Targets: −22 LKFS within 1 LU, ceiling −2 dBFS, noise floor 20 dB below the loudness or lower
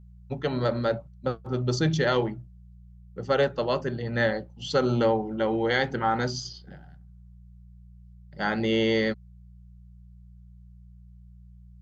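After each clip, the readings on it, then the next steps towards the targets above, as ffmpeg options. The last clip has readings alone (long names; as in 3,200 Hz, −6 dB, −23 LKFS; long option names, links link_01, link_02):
mains hum 60 Hz; hum harmonics up to 180 Hz; level of the hum −48 dBFS; integrated loudness −26.5 LKFS; sample peak −10.5 dBFS; target loudness −22.0 LKFS
→ -af "bandreject=frequency=60:width_type=h:width=4,bandreject=frequency=120:width_type=h:width=4,bandreject=frequency=180:width_type=h:width=4"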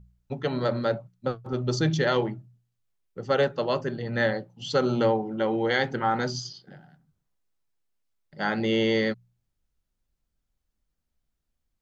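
mains hum none found; integrated loudness −26.5 LKFS; sample peak −10.5 dBFS; target loudness −22.0 LKFS
→ -af "volume=4.5dB"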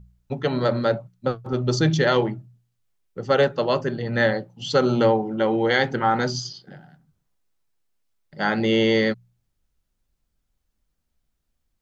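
integrated loudness −22.0 LKFS; sample peak −6.0 dBFS; background noise floor −75 dBFS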